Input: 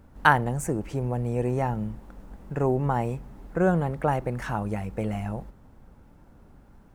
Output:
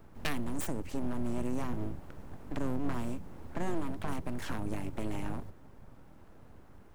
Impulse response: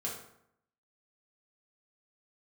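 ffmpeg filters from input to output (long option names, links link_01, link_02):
-filter_complex "[0:a]acrossover=split=190|3000[link_01][link_02][link_03];[link_02]acompressor=threshold=-38dB:ratio=5[link_04];[link_01][link_04][link_03]amix=inputs=3:normalize=0,aeval=exprs='abs(val(0))':channel_layout=same"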